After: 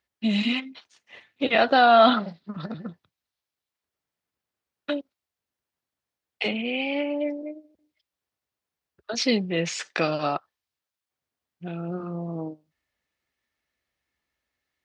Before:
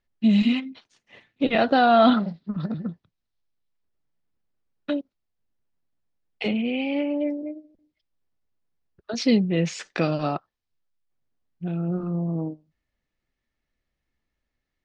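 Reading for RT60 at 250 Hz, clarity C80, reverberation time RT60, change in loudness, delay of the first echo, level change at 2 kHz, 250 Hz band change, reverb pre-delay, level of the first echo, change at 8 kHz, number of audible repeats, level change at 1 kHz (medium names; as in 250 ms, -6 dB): no reverb, no reverb, no reverb, -0.5 dB, no echo, +3.5 dB, -5.0 dB, no reverb, no echo, no reading, no echo, +2.0 dB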